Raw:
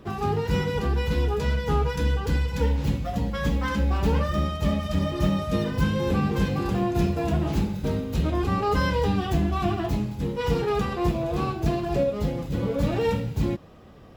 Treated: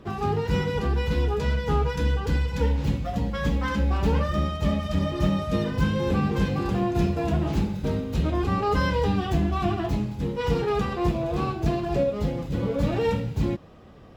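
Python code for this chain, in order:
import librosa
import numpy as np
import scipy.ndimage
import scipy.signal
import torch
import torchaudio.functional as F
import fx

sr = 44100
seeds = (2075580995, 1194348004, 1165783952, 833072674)

y = fx.high_shelf(x, sr, hz=10000.0, db=-8.0)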